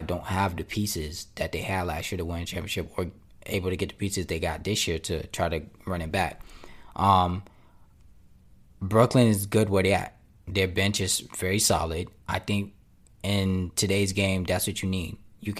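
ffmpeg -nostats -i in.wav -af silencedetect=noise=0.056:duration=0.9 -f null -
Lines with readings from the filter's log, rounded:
silence_start: 7.36
silence_end: 8.83 | silence_duration: 1.47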